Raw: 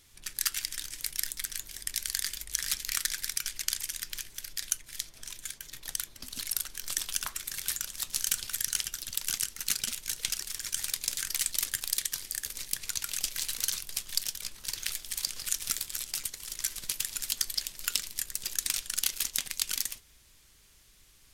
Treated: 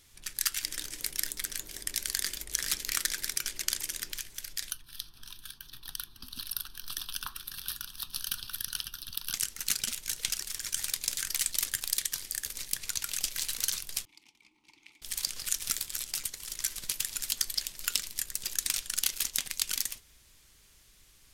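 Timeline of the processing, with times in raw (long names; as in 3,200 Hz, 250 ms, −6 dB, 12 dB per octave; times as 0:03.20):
0:00.63–0:04.12: parametric band 390 Hz +10.5 dB 1.9 octaves
0:04.71–0:09.34: phaser with its sweep stopped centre 2,100 Hz, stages 6
0:14.05–0:15.02: formant filter u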